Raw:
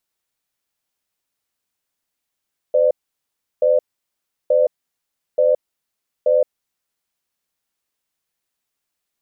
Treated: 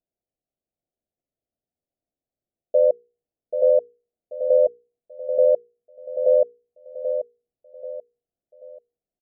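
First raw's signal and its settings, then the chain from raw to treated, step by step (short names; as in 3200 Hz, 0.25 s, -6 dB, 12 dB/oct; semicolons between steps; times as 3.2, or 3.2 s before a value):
cadence 511 Hz, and 597 Hz, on 0.17 s, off 0.71 s, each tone -14.5 dBFS 4.32 s
elliptic low-pass 710 Hz; notches 60/120/180/240/300/360/420/480 Hz; feedback echo 0.785 s, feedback 36%, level -8 dB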